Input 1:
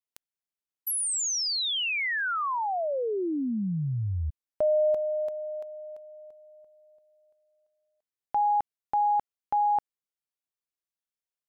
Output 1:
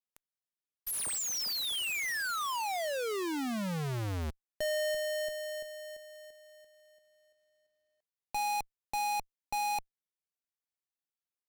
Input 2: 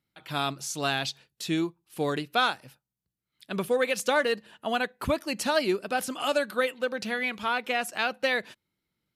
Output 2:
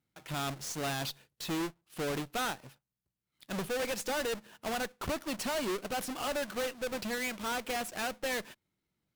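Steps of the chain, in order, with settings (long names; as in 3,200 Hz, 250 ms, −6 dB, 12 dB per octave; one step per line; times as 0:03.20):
each half-wave held at its own peak
tube saturation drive 26 dB, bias 0.45
level −5 dB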